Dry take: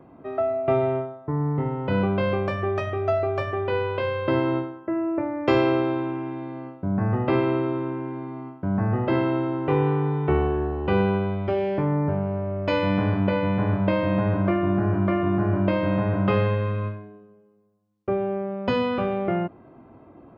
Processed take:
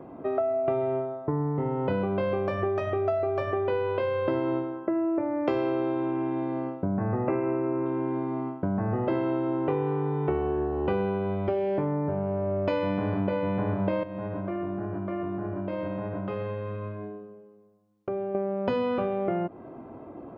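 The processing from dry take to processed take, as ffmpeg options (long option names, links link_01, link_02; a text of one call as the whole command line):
ffmpeg -i in.wav -filter_complex "[0:a]asettb=1/sr,asplit=3[link_01][link_02][link_03];[link_01]atrim=end=6.854[link_04];[link_02]atrim=start=6.85:end=7.86,asetpts=PTS-STARTPTS,afade=type=in:duration=0.004:curve=qsin,afade=type=out:start_time=1.006:duration=0.004:curve=qsin,asuperstop=centerf=4100:order=12:qfactor=1.2[link_05];[link_03]atrim=start=7.856[link_06];[link_04][link_05]acrossfade=duration=0.004:curve1=hsin:curve2=qsin[link_07];[link_07][link_06]acrossfade=duration=0.004:curve1=qsin:curve2=hsin,asettb=1/sr,asplit=3[link_08][link_09][link_10];[link_08]atrim=end=14.034[link_11];[link_09]atrim=start=14.03:end=18.35,asetpts=PTS-STARTPTS,afade=type=in:duration=0.004:curve=qsin,afade=type=out:start_time=4.316:duration=0.004:curve=qsin,acompressor=threshold=-35dB:ratio=5:attack=3.2:release=140:knee=1:detection=peak[link_12];[link_10]atrim=start=18.346[link_13];[link_11][link_12]acrossfade=duration=0.004:curve1=hsin:curve2=qsin[link_14];[link_14][link_13]acrossfade=duration=0.004:curve1=qsin:curve2=hsin,equalizer=frequency=490:width_type=o:width=2.6:gain=7.5,acompressor=threshold=-25dB:ratio=5" out.wav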